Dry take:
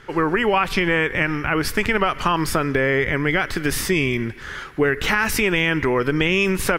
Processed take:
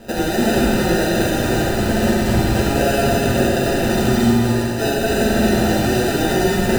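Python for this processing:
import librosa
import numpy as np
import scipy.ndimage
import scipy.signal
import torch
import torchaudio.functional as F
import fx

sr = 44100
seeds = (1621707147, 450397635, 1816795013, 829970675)

p1 = fx.highpass(x, sr, hz=600.0, slope=12, at=(3.02, 3.62))
p2 = fx.over_compress(p1, sr, threshold_db=-27.0, ratio=-1.0)
p3 = p1 + (p2 * 10.0 ** (1.5 / 20.0))
p4 = fx.sample_hold(p3, sr, seeds[0], rate_hz=1100.0, jitter_pct=0)
p5 = p4 + fx.echo_single(p4, sr, ms=221, db=-5.0, dry=0)
p6 = fx.rev_fdn(p5, sr, rt60_s=2.2, lf_ratio=0.85, hf_ratio=0.85, size_ms=26.0, drr_db=-6.5)
y = p6 * 10.0 ** (-8.5 / 20.0)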